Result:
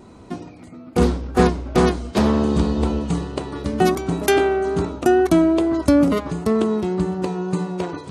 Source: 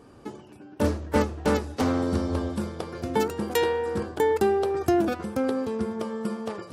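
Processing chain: tape speed -17%; wow and flutter 24 cents; trim +7 dB

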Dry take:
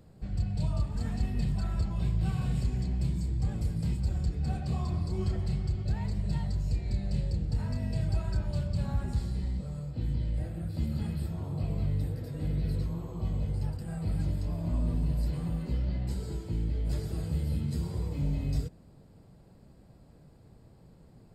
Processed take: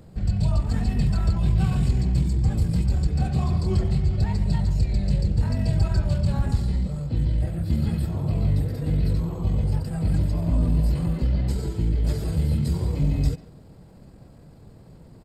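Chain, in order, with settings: speakerphone echo 200 ms, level -15 dB; tempo 1.4×; trim +8.5 dB

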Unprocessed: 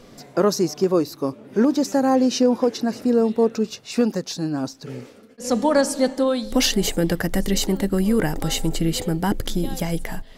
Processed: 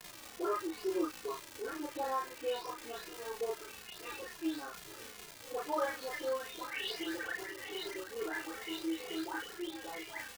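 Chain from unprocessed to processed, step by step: delay that grows with frequency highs late, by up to 435 ms; low-pass 3.1 kHz 24 dB/octave; peaking EQ 510 Hz -11.5 dB 1.2 oct; peak limiter -19 dBFS, peak gain reduction 7.5 dB; rippled Chebyshev high-pass 310 Hz, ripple 3 dB; crackle 260 per s -28 dBFS; doubling 34 ms -2.5 dB; endless flanger 2.4 ms -2.3 Hz; trim -3 dB

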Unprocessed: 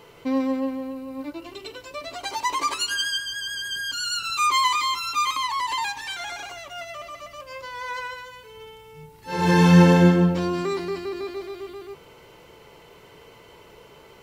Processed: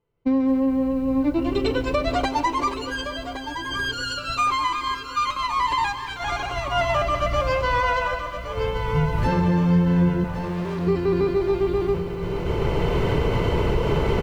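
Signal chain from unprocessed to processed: recorder AGC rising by 9.9 dB/s; RIAA curve playback; expander -16 dBFS; compression, threshold -18 dBFS, peak gain reduction 16 dB; 10.24–10.87 s: hard clipper -30 dBFS, distortion -15 dB; feedback delay 1116 ms, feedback 47%, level -10.5 dB; bit-crushed delay 219 ms, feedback 55%, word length 8-bit, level -14 dB

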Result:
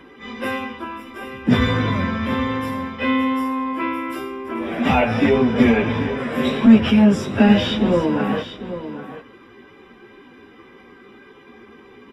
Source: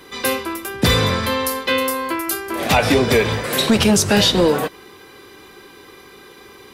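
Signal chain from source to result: Savitzky-Golay filter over 25 samples; peaking EQ 240 Hz +12 dB 0.4 oct; plain phase-vocoder stretch 1.8×; delay 793 ms -11.5 dB; trim -1 dB

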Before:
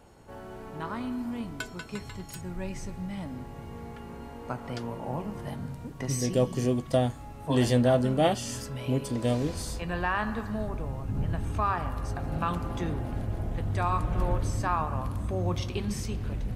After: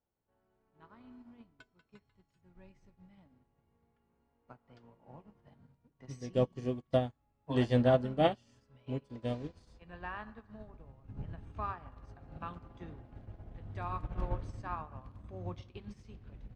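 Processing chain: low-pass 4.3 kHz 12 dB/octave; upward expansion 2.5:1, over -41 dBFS; trim -2 dB

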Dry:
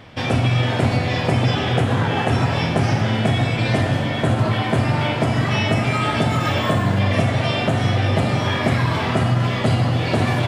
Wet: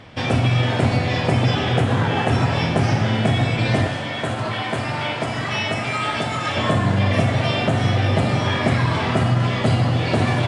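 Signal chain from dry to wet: 3.88–6.57 s: bass shelf 440 Hz -9.5 dB; AAC 96 kbps 22.05 kHz

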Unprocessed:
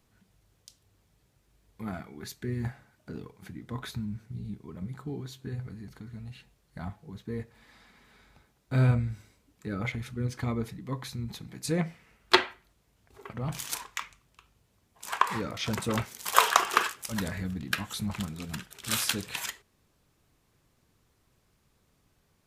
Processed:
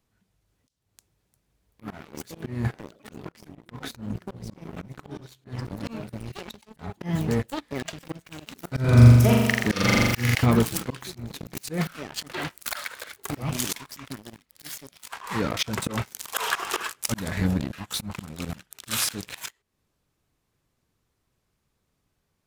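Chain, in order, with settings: ever faster or slower copies 479 ms, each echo +5 st, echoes 3, each echo -6 dB; waveshaping leveller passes 3; 8.80–10.35 s: flutter echo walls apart 7.2 m, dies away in 1.2 s; slow attack 310 ms

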